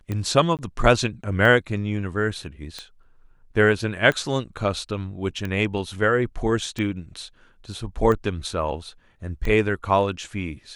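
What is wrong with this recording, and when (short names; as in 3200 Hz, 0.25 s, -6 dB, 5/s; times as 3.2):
tick 45 rpm -16 dBFS
0.57–0.59 gap 18 ms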